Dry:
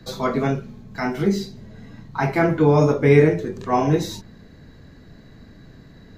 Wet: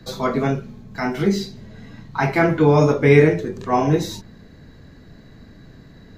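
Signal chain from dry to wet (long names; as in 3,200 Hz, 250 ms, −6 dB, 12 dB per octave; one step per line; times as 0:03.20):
0:01.14–0:03.41: parametric band 3,000 Hz +3.5 dB 2.3 octaves
level +1 dB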